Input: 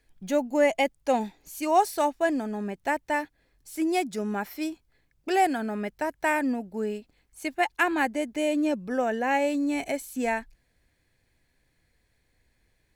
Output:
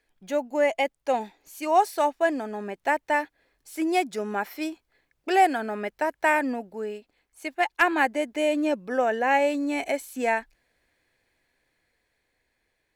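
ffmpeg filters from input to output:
-filter_complex "[0:a]dynaudnorm=f=460:g=9:m=4dB,bass=f=250:g=-13,treble=f=4k:g=-5,asettb=1/sr,asplit=3[a][b][c];[a]atrim=end=6.744[d];[b]atrim=start=6.74:end=7.82,asetpts=PTS-STARTPTS,afade=t=in:d=0.004:c=qsin,afade=t=out:st=1.076:d=0.004:c=qsin,aeval=exprs='0.501*(cos(1*acos(clip(val(0)/0.501,-1,1)))-cos(1*PI/2))+0.0562*(cos(3*acos(clip(val(0)/0.501,-1,1)))-cos(3*PI/2))':c=same[e];[c]atrim=start=7.816[f];[d][e]acrossfade=d=0.004:c1=hsin:c2=qsin[g];[g][f]acrossfade=d=0.004:c1=qsin:c2=hsin"

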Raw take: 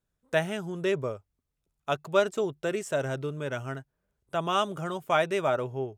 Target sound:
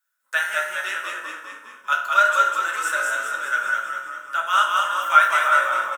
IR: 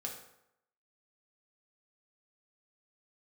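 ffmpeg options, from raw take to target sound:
-filter_complex "[0:a]highpass=f=1.4k:t=q:w=5.3,aemphasis=mode=production:type=50kf,asplit=9[a][b][c][d][e][f][g][h][i];[b]adelay=201,afreqshift=-35,volume=-3dB[j];[c]adelay=402,afreqshift=-70,volume=-7.9dB[k];[d]adelay=603,afreqshift=-105,volume=-12.8dB[l];[e]adelay=804,afreqshift=-140,volume=-17.6dB[m];[f]adelay=1005,afreqshift=-175,volume=-22.5dB[n];[g]adelay=1206,afreqshift=-210,volume=-27.4dB[o];[h]adelay=1407,afreqshift=-245,volume=-32.3dB[p];[i]adelay=1608,afreqshift=-280,volume=-37.2dB[q];[a][j][k][l][m][n][o][p][q]amix=inputs=9:normalize=0[r];[1:a]atrim=start_sample=2205,asetrate=52920,aresample=44100[s];[r][s]afir=irnorm=-1:irlink=0,volume=4dB"

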